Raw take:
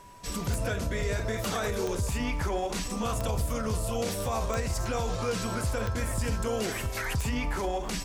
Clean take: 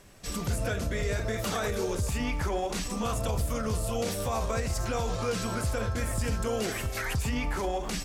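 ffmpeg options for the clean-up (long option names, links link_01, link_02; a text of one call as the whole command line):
ffmpeg -i in.wav -af "adeclick=threshold=4,bandreject=frequency=980:width=30" out.wav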